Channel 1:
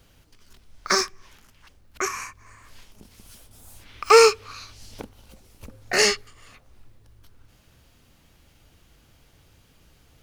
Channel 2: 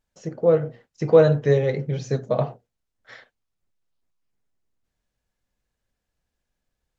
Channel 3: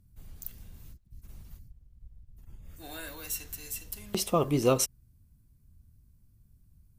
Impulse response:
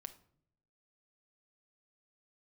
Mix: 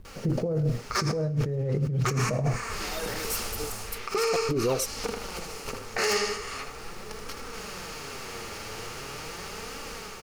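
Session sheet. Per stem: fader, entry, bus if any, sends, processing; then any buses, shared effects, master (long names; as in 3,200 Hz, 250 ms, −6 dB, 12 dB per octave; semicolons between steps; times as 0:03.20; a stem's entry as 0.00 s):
−8.5 dB, 0.05 s, bus A, send −8.5 dB, echo send −6 dB, compressor on every frequency bin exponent 0.6; automatic gain control gain up to 7 dB; flanger 0.41 Hz, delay 3.4 ms, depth 6.4 ms, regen +31%
+0.5 dB, 0.00 s, bus A, no send, no echo send, spectral tilt −4.5 dB per octave
−7.0 dB, 0.00 s, no bus, no send, no echo send, parametric band 440 Hz +14 dB 0.78 octaves; gate pattern "x.x.xx.xxxxxxx" 117 BPM; phase shifter 1.1 Hz, delay 2.9 ms, feedback 73%
bus A: 0.0 dB, bit reduction 11 bits; brickwall limiter −7 dBFS, peak gain reduction 9 dB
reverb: on, pre-delay 6 ms
echo: repeating echo 79 ms, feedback 43%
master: compressor whose output falls as the input rises −23 dBFS, ratio −1; wave folding −12.5 dBFS; brickwall limiter −18 dBFS, peak gain reduction 5.5 dB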